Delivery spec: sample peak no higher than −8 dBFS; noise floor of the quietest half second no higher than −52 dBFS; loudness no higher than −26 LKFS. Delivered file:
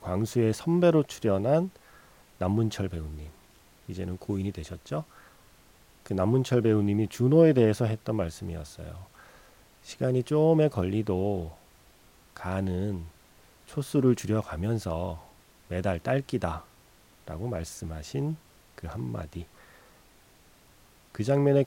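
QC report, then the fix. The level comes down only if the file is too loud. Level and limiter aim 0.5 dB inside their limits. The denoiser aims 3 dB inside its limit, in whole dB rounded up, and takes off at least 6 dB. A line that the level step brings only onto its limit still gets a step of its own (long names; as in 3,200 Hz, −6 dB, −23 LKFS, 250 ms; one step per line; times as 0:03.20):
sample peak −9.5 dBFS: in spec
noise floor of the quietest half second −58 dBFS: in spec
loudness −28.0 LKFS: in spec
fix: no processing needed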